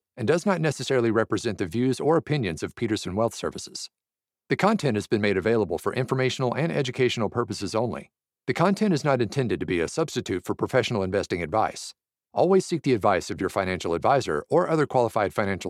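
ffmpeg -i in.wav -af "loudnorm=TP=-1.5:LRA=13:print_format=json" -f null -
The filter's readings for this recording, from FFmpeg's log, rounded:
"input_i" : "-24.8",
"input_tp" : "-5.6",
"input_lra" : "2.2",
"input_thresh" : "-35.0",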